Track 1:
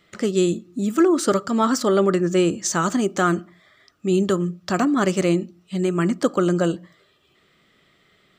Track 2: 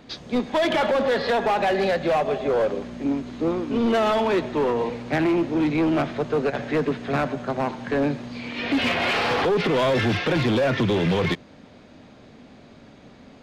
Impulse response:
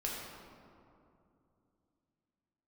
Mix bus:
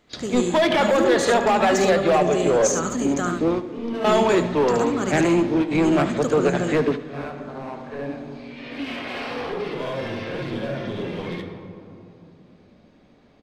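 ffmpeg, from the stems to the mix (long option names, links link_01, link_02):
-filter_complex "[0:a]equalizer=frequency=6600:width=6.3:gain=12.5,volume=-7.5dB,asplit=3[link_01][link_02][link_03];[link_02]volume=-5.5dB[link_04];[1:a]bandreject=frequency=6900:width=15,volume=1.5dB,asplit=3[link_05][link_06][link_07];[link_06]volume=-15dB[link_08];[link_07]volume=-14.5dB[link_09];[link_03]apad=whole_len=591994[link_10];[link_05][link_10]sidechaingate=range=-33dB:threshold=-54dB:ratio=16:detection=peak[link_11];[2:a]atrim=start_sample=2205[link_12];[link_08][link_12]afir=irnorm=-1:irlink=0[link_13];[link_04][link_09]amix=inputs=2:normalize=0,aecho=0:1:73:1[link_14];[link_01][link_11][link_13][link_14]amix=inputs=4:normalize=0"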